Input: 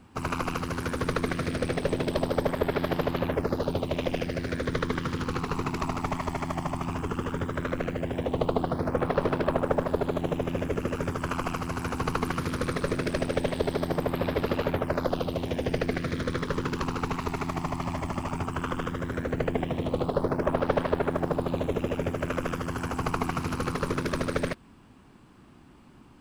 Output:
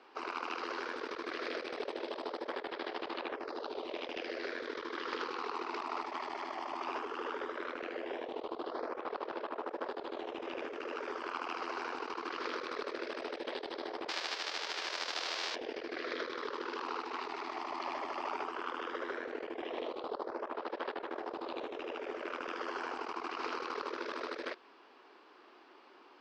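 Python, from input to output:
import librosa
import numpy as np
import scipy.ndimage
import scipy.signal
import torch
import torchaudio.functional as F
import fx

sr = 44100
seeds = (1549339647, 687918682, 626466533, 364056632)

y = fx.envelope_flatten(x, sr, power=0.1, at=(14.08, 15.54), fade=0.02)
y = scipy.signal.sosfilt(scipy.signal.ellip(3, 1.0, 40, [390.0, 5000.0], 'bandpass', fs=sr, output='sos'), y)
y = fx.over_compress(y, sr, threshold_db=-37.0, ratio=-1.0)
y = y * librosa.db_to_amplitude(-3.0)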